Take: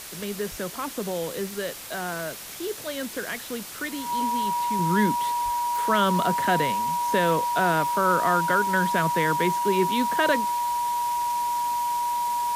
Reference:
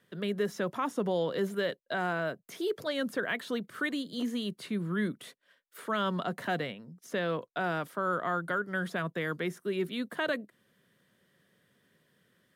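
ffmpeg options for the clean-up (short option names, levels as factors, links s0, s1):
-filter_complex "[0:a]bandreject=f=960:w=30,asplit=3[s0][s1][s2];[s0]afade=t=out:st=0.5:d=0.02[s3];[s1]highpass=f=140:w=0.5412,highpass=f=140:w=1.3066,afade=t=in:st=0.5:d=0.02,afade=t=out:st=0.62:d=0.02[s4];[s2]afade=t=in:st=0.62:d=0.02[s5];[s3][s4][s5]amix=inputs=3:normalize=0,asplit=3[s6][s7][s8];[s6]afade=t=out:st=5.44:d=0.02[s9];[s7]highpass=f=140:w=0.5412,highpass=f=140:w=1.3066,afade=t=in:st=5.44:d=0.02,afade=t=out:st=5.56:d=0.02[s10];[s8]afade=t=in:st=5.56:d=0.02[s11];[s9][s10][s11]amix=inputs=3:normalize=0,afwtdn=0.013,asetnsamples=n=441:p=0,asendcmd='4.79 volume volume -8dB',volume=1"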